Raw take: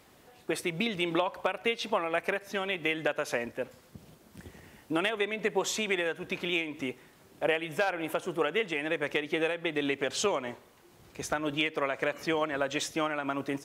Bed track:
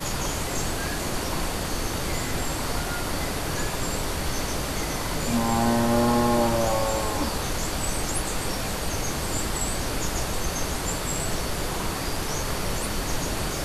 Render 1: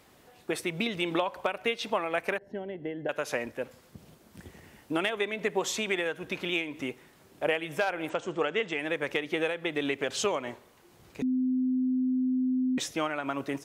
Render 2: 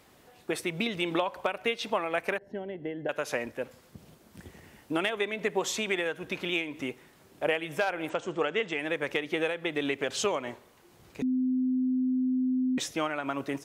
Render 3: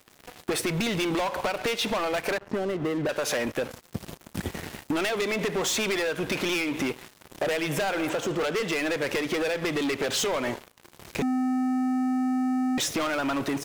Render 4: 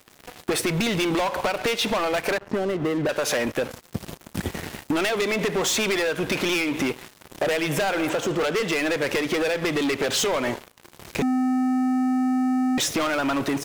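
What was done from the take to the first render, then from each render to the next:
2.38–3.09 running mean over 36 samples; 8.09–8.79 steep low-pass 8100 Hz 72 dB/oct; 11.22–12.78 bleep 256 Hz -24 dBFS
nothing audible
sample leveller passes 5; compressor 6:1, threshold -26 dBFS, peak gain reduction 8.5 dB
gain +3.5 dB

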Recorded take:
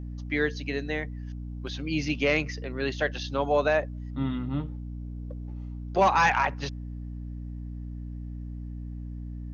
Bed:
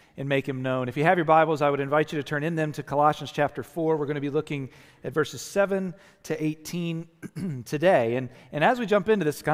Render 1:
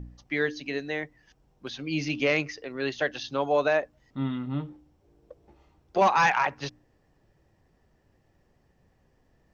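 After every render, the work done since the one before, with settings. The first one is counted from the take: de-hum 60 Hz, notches 5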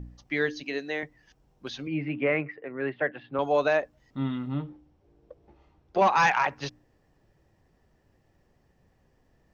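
0.63–1.03 HPF 220 Hz; 1.87–3.39 elliptic band-pass 120–2100 Hz, stop band 50 dB; 4.54–6.13 air absorption 90 m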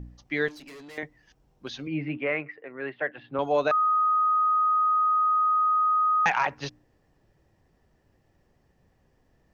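0.48–0.98 tube stage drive 43 dB, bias 0.35; 2.17–3.18 low shelf 400 Hz -8.5 dB; 3.71–6.26 bleep 1250 Hz -19.5 dBFS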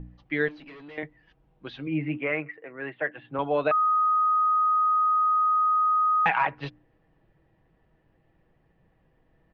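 LPF 3300 Hz 24 dB/oct; comb 6.2 ms, depth 36%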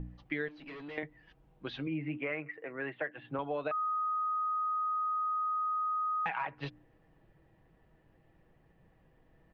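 compressor 4:1, threshold -34 dBFS, peak gain reduction 13 dB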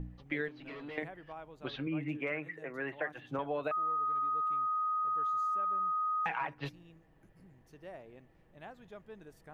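add bed -28.5 dB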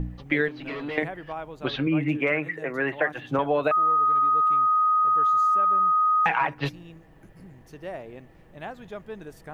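gain +12 dB

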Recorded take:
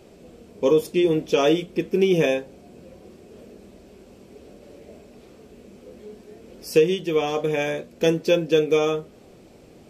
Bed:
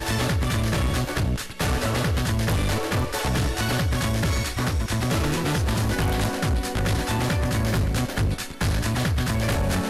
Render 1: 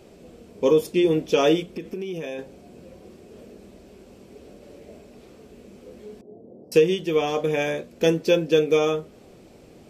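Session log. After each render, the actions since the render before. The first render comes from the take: 1.6–2.39 compressor 8:1, threshold -28 dBFS; 6.21–6.72 elliptic band-pass 100–730 Hz, stop band 50 dB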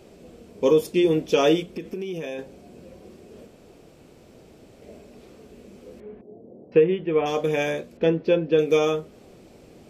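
3.47–4.82 room tone; 6–7.26 inverse Chebyshev low-pass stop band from 11000 Hz, stop band 80 dB; 7.97–8.59 air absorption 330 m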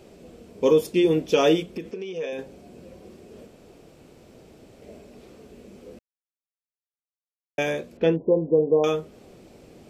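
1.91–2.33 speaker cabinet 250–6900 Hz, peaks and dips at 330 Hz -9 dB, 470 Hz +8 dB, 720 Hz -4 dB; 5.99–7.58 mute; 8.16–8.84 brick-wall FIR low-pass 1100 Hz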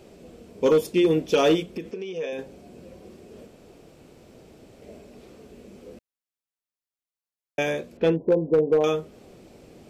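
overloaded stage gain 13 dB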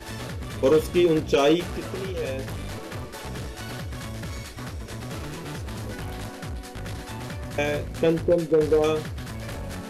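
add bed -11 dB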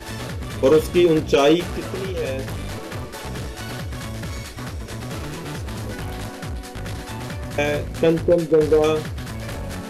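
gain +4 dB

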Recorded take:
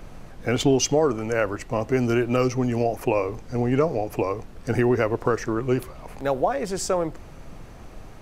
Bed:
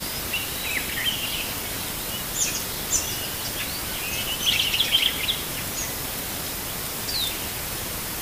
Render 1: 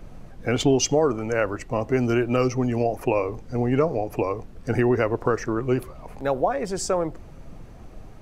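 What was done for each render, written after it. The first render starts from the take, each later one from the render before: denoiser 6 dB, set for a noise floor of -43 dBFS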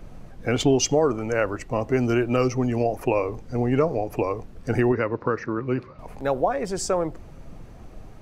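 4.92–5.99 speaker cabinet 110–4400 Hz, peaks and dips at 390 Hz -4 dB, 710 Hz -10 dB, 3200 Hz -9 dB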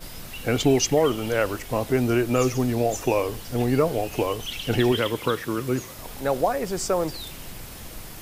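add bed -12 dB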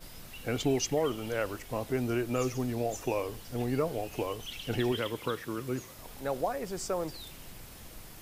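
gain -9 dB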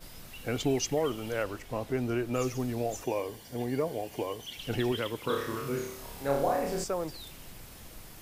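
1.42–2.33 high shelf 7800 Hz -> 4700 Hz -6.5 dB; 3.04–4.59 notch comb 1300 Hz; 5.26–6.84 flutter echo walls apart 4.9 m, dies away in 0.66 s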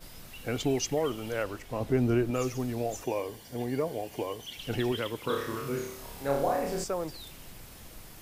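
1.8–2.31 low shelf 450 Hz +7.5 dB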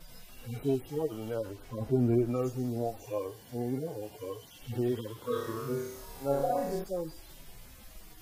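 median-filter separation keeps harmonic; dynamic EQ 2500 Hz, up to -7 dB, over -59 dBFS, Q 1.6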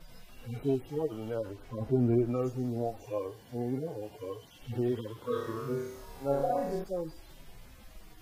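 high shelf 5100 Hz -9 dB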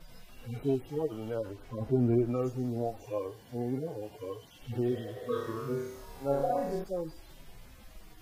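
4.94–5.26 spectral repair 400–2000 Hz before

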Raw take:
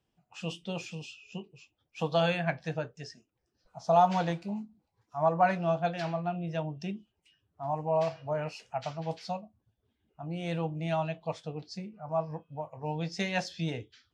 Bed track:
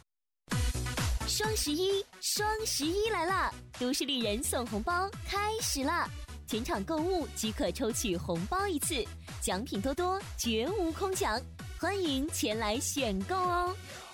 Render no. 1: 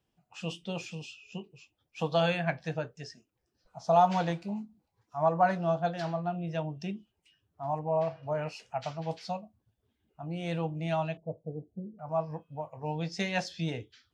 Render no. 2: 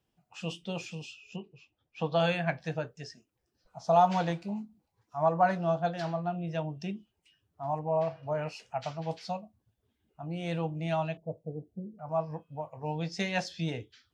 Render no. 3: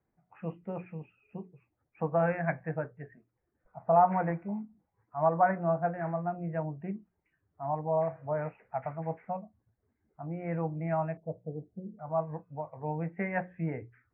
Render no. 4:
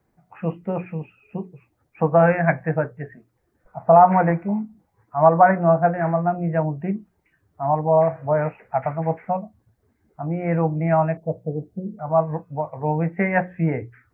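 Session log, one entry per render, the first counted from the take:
5.38–6.39 bell 2400 Hz -8.5 dB 0.46 oct; 7.79–8.23 LPF 1300 Hz 6 dB/oct; 11.17–11.99 steep low-pass 600 Hz
1.36–2.2 air absorption 140 m
steep low-pass 2200 Hz 72 dB/oct; notches 60/120/180 Hz
gain +12 dB; limiter -3 dBFS, peak gain reduction 2.5 dB

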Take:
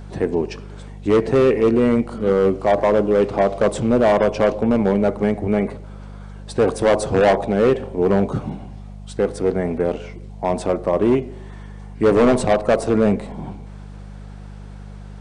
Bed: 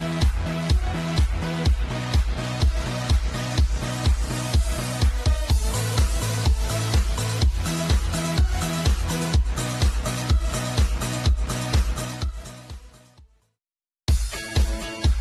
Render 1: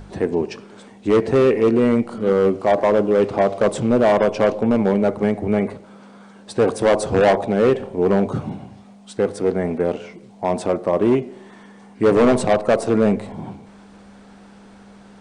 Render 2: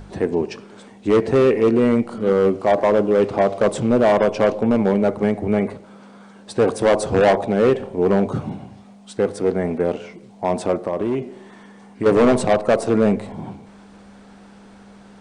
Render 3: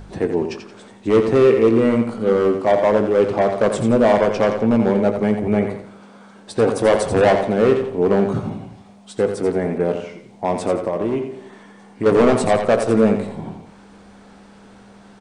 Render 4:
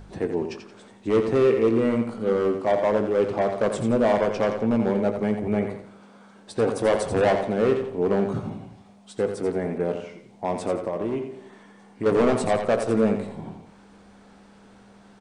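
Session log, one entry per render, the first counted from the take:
de-hum 50 Hz, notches 3
10.82–12.06 compressor, threshold -18 dBFS
doubler 18 ms -12 dB; feedback echo 86 ms, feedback 34%, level -8 dB
gain -6 dB

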